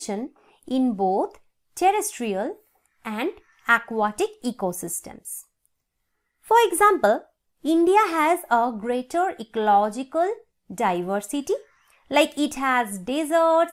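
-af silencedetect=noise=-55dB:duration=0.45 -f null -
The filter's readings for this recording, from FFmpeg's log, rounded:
silence_start: 5.66
silence_end: 6.43 | silence_duration: 0.78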